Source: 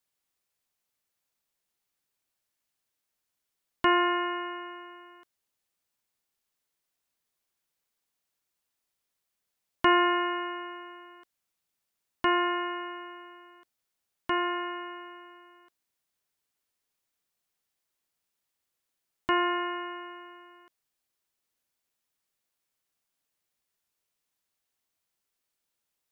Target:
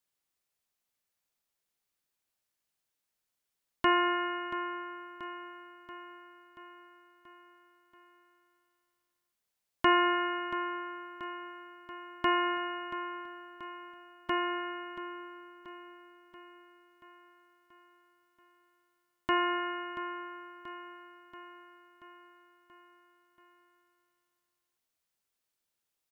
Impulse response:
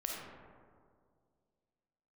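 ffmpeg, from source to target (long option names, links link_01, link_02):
-filter_complex "[0:a]aecho=1:1:682|1364|2046|2728|3410|4092:0.224|0.132|0.0779|0.046|0.0271|0.016,asplit=2[link_01][link_02];[1:a]atrim=start_sample=2205[link_03];[link_02][link_03]afir=irnorm=-1:irlink=0,volume=-16.5dB[link_04];[link_01][link_04]amix=inputs=2:normalize=0,volume=-3.5dB"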